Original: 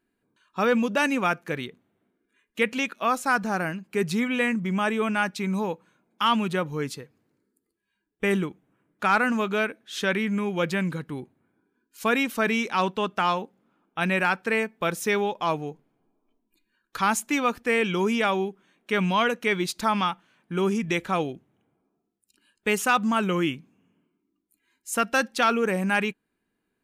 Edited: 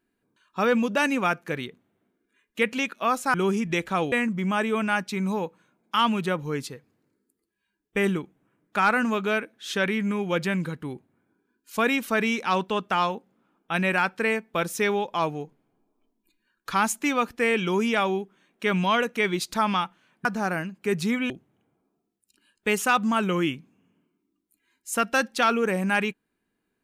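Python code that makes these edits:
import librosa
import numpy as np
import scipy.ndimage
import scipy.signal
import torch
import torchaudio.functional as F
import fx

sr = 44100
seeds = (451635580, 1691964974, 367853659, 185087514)

y = fx.edit(x, sr, fx.swap(start_s=3.34, length_s=1.05, other_s=20.52, other_length_s=0.78), tone=tone)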